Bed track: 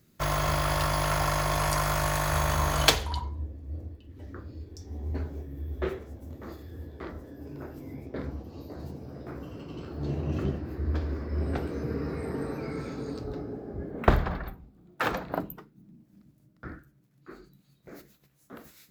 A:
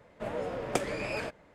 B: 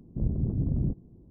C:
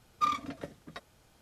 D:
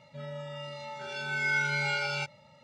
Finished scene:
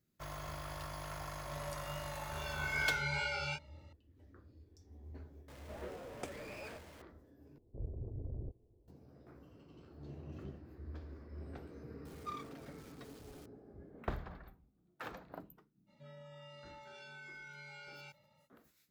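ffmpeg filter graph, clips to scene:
-filter_complex "[4:a]asplit=2[a][b];[0:a]volume=-18dB[c];[a]flanger=delay=22.5:depth=5:speed=2.5[d];[1:a]aeval=exprs='val(0)+0.5*0.0168*sgn(val(0))':c=same[e];[2:a]firequalizer=gain_entry='entry(110,0);entry(160,-16);entry(430,6);entry(1500,-5)':delay=0.05:min_phase=1[f];[3:a]aeval=exprs='val(0)+0.5*0.0112*sgn(val(0))':c=same[g];[b]acompressor=threshold=-36dB:ratio=6:attack=3.2:release=140:knee=1:detection=peak[h];[c]asplit=2[i][j];[i]atrim=end=7.584[k];[f]atrim=end=1.3,asetpts=PTS-STARTPTS,volume=-13dB[l];[j]atrim=start=8.876[m];[d]atrim=end=2.63,asetpts=PTS-STARTPTS,volume=-4dB,afade=t=in:d=0.004:c=hsin,afade=t=out:st=2.626:d=0.004:c=hsin,adelay=1300[n];[e]atrim=end=1.54,asetpts=PTS-STARTPTS,volume=-16dB,afade=t=in:d=0.004:c=hsin,afade=t=out:st=1.536:d=0.004:c=hsin,adelay=5480[o];[g]atrim=end=1.41,asetpts=PTS-STARTPTS,volume=-16.5dB,afade=t=in:d=0.004:c=hsin,afade=t=out:st=1.406:d=0.004:c=hsin,adelay=12050[p];[h]atrim=end=2.63,asetpts=PTS-STARTPTS,volume=-13dB,afade=t=in:d=0.05,afade=t=out:st=2.58:d=0.05,adelay=15860[q];[k][l]acrossfade=d=0.004:c1=hsin:c2=hsin[r];[r][m]acrossfade=d=0.004:c1=hsin:c2=hsin[s];[s][n][o][p][q]amix=inputs=5:normalize=0"

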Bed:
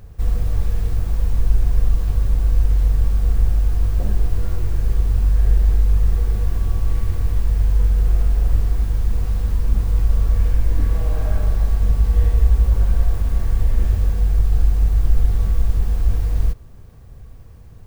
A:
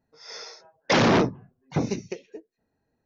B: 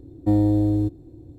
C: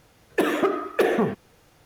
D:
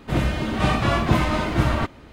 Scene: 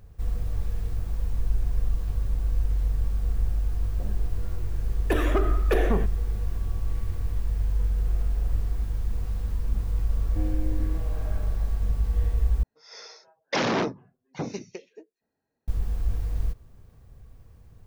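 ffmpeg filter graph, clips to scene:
-filter_complex "[0:a]volume=-9dB[a];[2:a]asplit=2[b][c];[c]adelay=25,volume=-4.5dB[d];[b][d]amix=inputs=2:normalize=0[e];[1:a]lowshelf=f=140:g=-9[f];[a]asplit=2[g][h];[g]atrim=end=12.634[i];[f]atrim=end=3.05,asetpts=PTS-STARTPTS,volume=-4.5dB[j];[h]atrim=start=15.676[k];[3:a]atrim=end=1.85,asetpts=PTS-STARTPTS,volume=-4.5dB,afade=t=in:d=0.004:c=hsin,afade=t=out:st=1.846:d=0.004:c=hsin,adelay=4720[l];[e]atrim=end=1.38,asetpts=PTS-STARTPTS,volume=-17.5dB,afade=t=in:d=0.004:c=hsin,afade=t=out:st=1.376:d=0.004:c=hsin,adelay=10090[m];[i][j]acrossfade=d=0.004:c1=hsin:c2=hsin[n];[n][k]acrossfade=d=0.004:c1=hsin:c2=hsin[o];[o][l][m]amix=inputs=3:normalize=0"

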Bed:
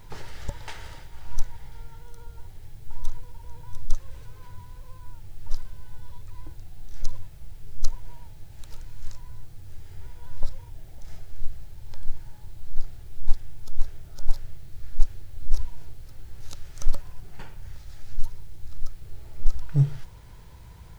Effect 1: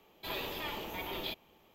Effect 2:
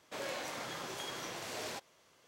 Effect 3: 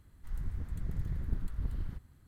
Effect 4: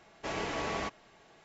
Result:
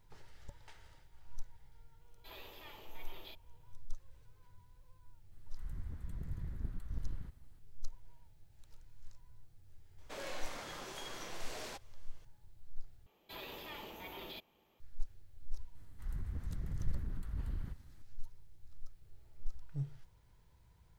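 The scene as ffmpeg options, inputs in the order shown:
-filter_complex "[1:a]asplit=2[a][b];[3:a]asplit=2[c][d];[0:a]volume=-19dB[e];[a]bass=f=250:g=-8,treble=f=4k:g=1[f];[b]alimiter=level_in=5.5dB:limit=-24dB:level=0:latency=1:release=16,volume=-5.5dB[g];[d]alimiter=level_in=6dB:limit=-24dB:level=0:latency=1:release=34,volume=-6dB[h];[e]asplit=2[i][j];[i]atrim=end=13.064[k];[g]atrim=end=1.74,asetpts=PTS-STARTPTS,volume=-8dB[l];[j]atrim=start=14.796[m];[f]atrim=end=1.74,asetpts=PTS-STARTPTS,volume=-14.5dB,afade=t=in:d=0.004:c=hsin,afade=t=out:st=1.736:d=0.004:c=hsin,adelay=2010[n];[c]atrim=end=2.27,asetpts=PTS-STARTPTS,volume=-6.5dB,afade=t=in:d=0.004:c=hsin,afade=t=out:st=2.266:d=0.004:c=hsin,adelay=5320[o];[2:a]atrim=end=2.27,asetpts=PTS-STARTPTS,volume=-4.5dB,afade=t=in:d=0.004:c=hsin,afade=t=out:st=2.266:d=0.004:c=hsin,adelay=9980[p];[h]atrim=end=2.27,asetpts=PTS-STARTPTS,volume=-1.5dB,afade=t=in:d=0.004:c=hsin,afade=t=out:st=2.266:d=0.004:c=hsin,adelay=15750[q];[k][l]acrossfade=d=0.004:c1=hsin:c2=hsin[r];[r][m]acrossfade=d=0.004:c1=hsin:c2=hsin[s];[s][n][o][p][q]amix=inputs=5:normalize=0"

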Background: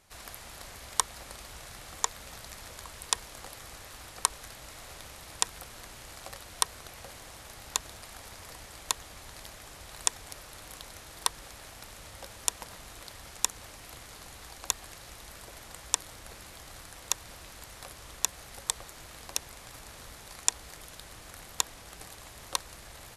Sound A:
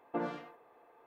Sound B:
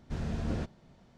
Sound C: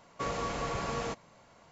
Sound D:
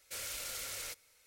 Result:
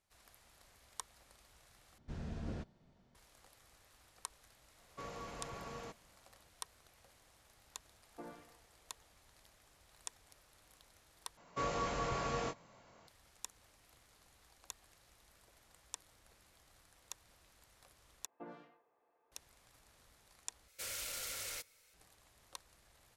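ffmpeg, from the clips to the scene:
-filter_complex "[3:a]asplit=2[a][b];[1:a]asplit=2[c][d];[0:a]volume=-19.5dB[e];[b]asplit=2[f][g];[g]adelay=23,volume=-6dB[h];[f][h]amix=inputs=2:normalize=0[i];[e]asplit=5[j][k][l][m][n];[j]atrim=end=1.984[o];[2:a]atrim=end=1.17,asetpts=PTS-STARTPTS,volume=-9.5dB[p];[k]atrim=start=3.146:end=11.374[q];[i]atrim=end=1.71,asetpts=PTS-STARTPTS,volume=-4.5dB[r];[l]atrim=start=13.076:end=18.264[s];[d]atrim=end=1.06,asetpts=PTS-STARTPTS,volume=-15.5dB[t];[m]atrim=start=19.316:end=20.684[u];[4:a]atrim=end=1.26,asetpts=PTS-STARTPTS,volume=-1.5dB[v];[n]atrim=start=21.936[w];[a]atrim=end=1.71,asetpts=PTS-STARTPTS,volume=-13dB,afade=t=in:d=0.004:c=hsin,afade=t=out:st=1.706:d=0.004:c=hsin,adelay=4780[x];[c]atrim=end=1.06,asetpts=PTS-STARTPTS,volume=-15dB,afade=t=in:d=0.004:c=hsin,afade=t=out:st=1.056:d=0.004:c=hsin,adelay=8040[y];[o][p]acrossfade=d=0.004:c1=hsin:c2=hsin[z];[z][q]acrossfade=d=0.004:c1=hsin:c2=hsin[aa];[aa][r]acrossfade=d=0.004:c1=hsin:c2=hsin[ab];[ab][s]acrossfade=d=0.004:c1=hsin:c2=hsin[ac];[ac][t]acrossfade=d=0.004:c1=hsin:c2=hsin[ad];[ad][u]acrossfade=d=0.004:c1=hsin:c2=hsin[ae];[ae][v]acrossfade=d=0.004:c1=hsin:c2=hsin[af];[af][w]acrossfade=d=0.004:c1=hsin:c2=hsin[ag];[ag][x][y]amix=inputs=3:normalize=0"

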